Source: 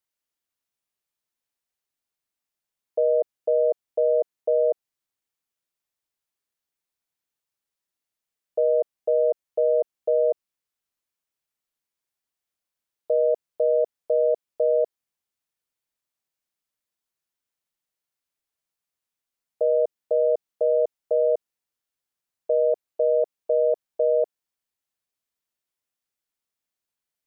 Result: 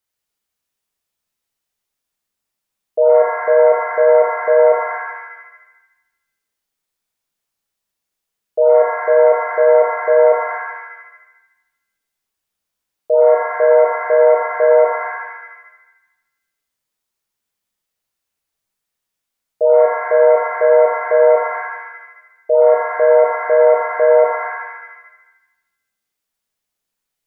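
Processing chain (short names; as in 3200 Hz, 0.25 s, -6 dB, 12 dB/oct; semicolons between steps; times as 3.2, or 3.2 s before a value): shimmer reverb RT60 1 s, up +7 st, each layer -2 dB, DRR 2 dB; gain +4.5 dB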